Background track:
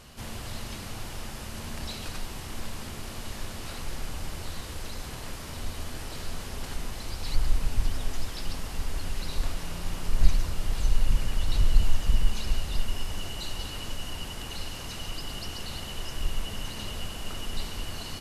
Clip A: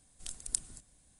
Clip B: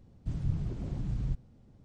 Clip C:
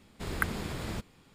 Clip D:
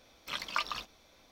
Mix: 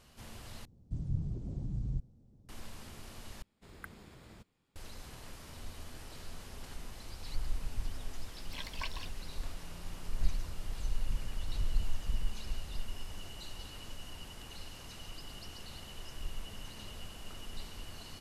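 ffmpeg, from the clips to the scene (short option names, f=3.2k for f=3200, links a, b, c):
-filter_complex "[0:a]volume=-11dB[a];[2:a]equalizer=f=1.9k:t=o:w=2.5:g=-13.5[b];[4:a]asuperstop=centerf=1300:order=20:qfactor=3.3[c];[a]asplit=3[d][e][f];[d]atrim=end=0.654[g];[b]atrim=end=1.84,asetpts=PTS-STARTPTS,volume=-3dB[h];[e]atrim=start=2.486:end=3.424[i];[3:a]atrim=end=1.34,asetpts=PTS-STARTPTS,volume=-18dB[j];[f]atrim=start=4.756[k];[c]atrim=end=1.31,asetpts=PTS-STARTPTS,volume=-6.5dB,afade=t=in:d=0.004:c=hsin,afade=t=out:st=1.306:d=0.004:c=hsin,adelay=8250[l];[g][h]acrossfade=d=0.004:c1=hsin:c2=hsin[m];[m][i]acrossfade=d=0.004:c1=hsin:c2=hsin[n];[n][j]acrossfade=d=0.004:c1=hsin:c2=hsin[o];[o][k]acrossfade=d=0.004:c1=hsin:c2=hsin[p];[p][l]amix=inputs=2:normalize=0"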